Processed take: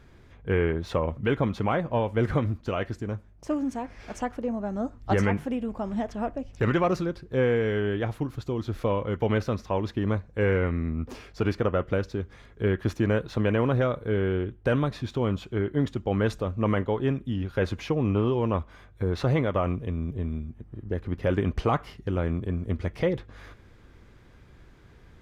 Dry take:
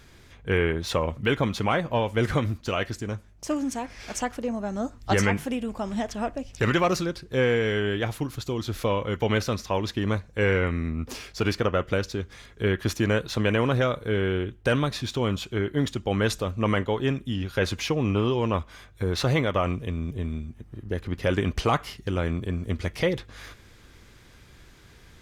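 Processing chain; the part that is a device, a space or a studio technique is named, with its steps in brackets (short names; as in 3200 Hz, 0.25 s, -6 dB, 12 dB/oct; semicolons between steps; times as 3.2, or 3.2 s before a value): through cloth (high shelf 2500 Hz -15 dB)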